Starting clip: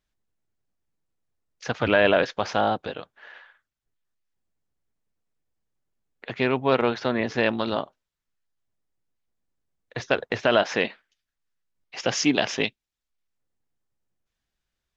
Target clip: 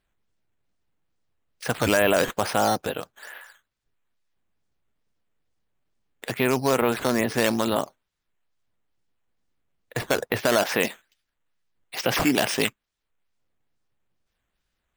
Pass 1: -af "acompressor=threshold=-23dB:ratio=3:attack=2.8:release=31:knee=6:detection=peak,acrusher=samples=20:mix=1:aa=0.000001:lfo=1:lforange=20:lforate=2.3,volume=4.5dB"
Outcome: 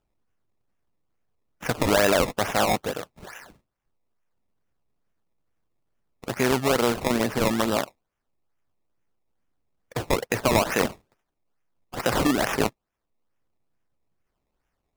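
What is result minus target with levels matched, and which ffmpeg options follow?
decimation with a swept rate: distortion +9 dB
-af "acompressor=threshold=-23dB:ratio=3:attack=2.8:release=31:knee=6:detection=peak,acrusher=samples=6:mix=1:aa=0.000001:lfo=1:lforange=6:lforate=2.3,volume=4.5dB"

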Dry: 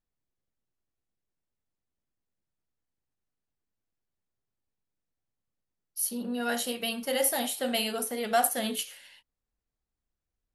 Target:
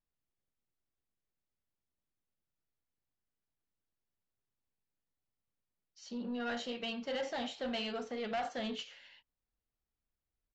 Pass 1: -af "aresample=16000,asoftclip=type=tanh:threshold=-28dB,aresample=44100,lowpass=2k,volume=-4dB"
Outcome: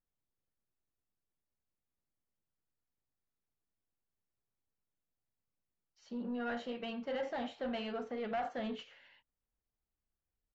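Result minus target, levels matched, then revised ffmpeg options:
4000 Hz band -6.5 dB
-af "aresample=16000,asoftclip=type=tanh:threshold=-28dB,aresample=44100,lowpass=4.2k,volume=-4dB"

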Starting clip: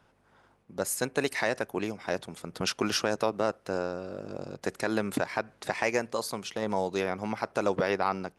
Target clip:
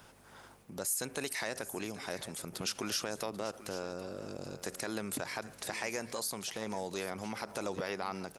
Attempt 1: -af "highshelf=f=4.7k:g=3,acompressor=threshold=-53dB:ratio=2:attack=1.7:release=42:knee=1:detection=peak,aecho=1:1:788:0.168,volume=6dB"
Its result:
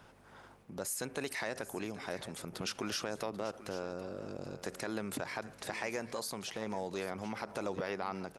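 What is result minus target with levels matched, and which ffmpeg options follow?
8000 Hz band -3.5 dB
-af "highshelf=f=4.7k:g=15,acompressor=threshold=-53dB:ratio=2:attack=1.7:release=42:knee=1:detection=peak,aecho=1:1:788:0.168,volume=6dB"

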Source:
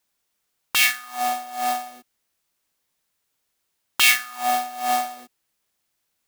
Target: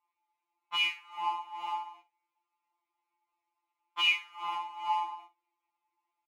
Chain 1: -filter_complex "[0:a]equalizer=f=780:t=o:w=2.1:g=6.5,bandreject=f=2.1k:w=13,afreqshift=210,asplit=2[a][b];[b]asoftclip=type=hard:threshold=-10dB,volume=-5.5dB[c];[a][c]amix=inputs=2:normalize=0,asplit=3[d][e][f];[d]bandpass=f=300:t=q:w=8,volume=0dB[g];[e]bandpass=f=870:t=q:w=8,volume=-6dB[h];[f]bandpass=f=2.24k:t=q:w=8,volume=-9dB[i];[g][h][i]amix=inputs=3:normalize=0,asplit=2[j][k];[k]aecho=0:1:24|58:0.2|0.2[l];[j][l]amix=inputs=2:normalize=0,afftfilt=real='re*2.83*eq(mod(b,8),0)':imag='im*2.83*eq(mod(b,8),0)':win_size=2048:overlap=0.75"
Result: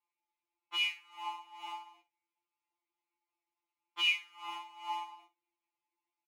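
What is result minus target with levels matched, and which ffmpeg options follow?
1000 Hz band -5.0 dB
-filter_complex "[0:a]equalizer=f=780:t=o:w=2.1:g=17.5,bandreject=f=2.1k:w=13,afreqshift=210,asplit=2[a][b];[b]asoftclip=type=hard:threshold=-10dB,volume=-5.5dB[c];[a][c]amix=inputs=2:normalize=0,asplit=3[d][e][f];[d]bandpass=f=300:t=q:w=8,volume=0dB[g];[e]bandpass=f=870:t=q:w=8,volume=-6dB[h];[f]bandpass=f=2.24k:t=q:w=8,volume=-9dB[i];[g][h][i]amix=inputs=3:normalize=0,asplit=2[j][k];[k]aecho=0:1:24|58:0.2|0.2[l];[j][l]amix=inputs=2:normalize=0,afftfilt=real='re*2.83*eq(mod(b,8),0)':imag='im*2.83*eq(mod(b,8),0)':win_size=2048:overlap=0.75"

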